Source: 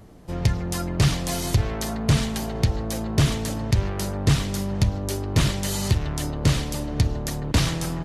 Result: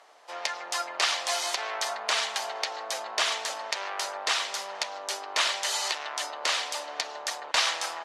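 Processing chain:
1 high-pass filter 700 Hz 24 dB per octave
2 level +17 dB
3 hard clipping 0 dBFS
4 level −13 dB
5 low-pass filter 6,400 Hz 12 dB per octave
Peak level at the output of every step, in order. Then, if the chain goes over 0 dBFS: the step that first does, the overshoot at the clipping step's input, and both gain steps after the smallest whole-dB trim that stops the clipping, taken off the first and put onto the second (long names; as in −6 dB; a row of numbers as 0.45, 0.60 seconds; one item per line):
−11.5, +5.5, 0.0, −13.0, −12.0 dBFS
step 2, 5.5 dB
step 2 +11 dB, step 4 −7 dB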